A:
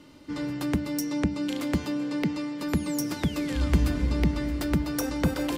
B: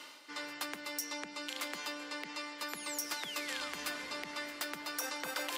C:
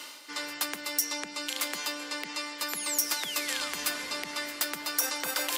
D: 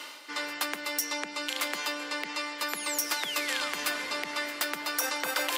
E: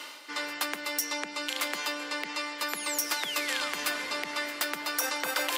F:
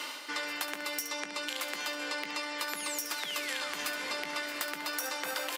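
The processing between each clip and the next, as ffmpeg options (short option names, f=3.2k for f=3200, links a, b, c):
-af "areverse,acompressor=mode=upward:threshold=-30dB:ratio=2.5,areverse,highpass=1k,alimiter=limit=-24dB:level=0:latency=1:release=60,volume=1dB"
-af "highshelf=f=5.3k:g=10,volume=20dB,asoftclip=hard,volume=-20dB,volume=4.5dB"
-af "bass=f=250:g=-7,treble=f=4k:g=-7,volume=3.5dB"
-af anull
-af "acompressor=threshold=-36dB:ratio=6,aecho=1:1:19|71:0.299|0.316,volume=3dB"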